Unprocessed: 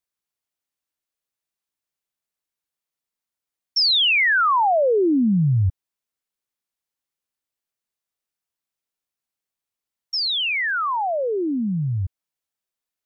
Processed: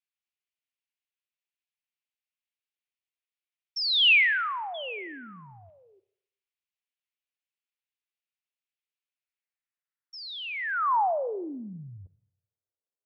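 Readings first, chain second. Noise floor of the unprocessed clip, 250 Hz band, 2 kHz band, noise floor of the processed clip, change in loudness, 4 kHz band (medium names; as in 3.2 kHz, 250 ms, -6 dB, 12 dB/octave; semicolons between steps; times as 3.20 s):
under -85 dBFS, -20.0 dB, -4.5 dB, under -85 dBFS, -5.0 dB, -6.0 dB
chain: painted sound fall, 4.74–6.00 s, 370–3500 Hz -37 dBFS; band-pass sweep 2.6 kHz -> 470 Hz, 9.07–12.20 s; Schroeder reverb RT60 0.75 s, combs from 33 ms, DRR 16.5 dB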